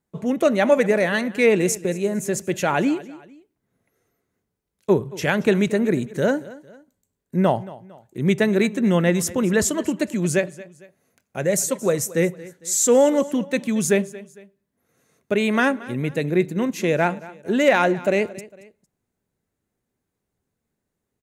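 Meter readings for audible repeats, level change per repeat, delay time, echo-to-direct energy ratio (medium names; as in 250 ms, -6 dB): 2, -7.5 dB, 227 ms, -18.5 dB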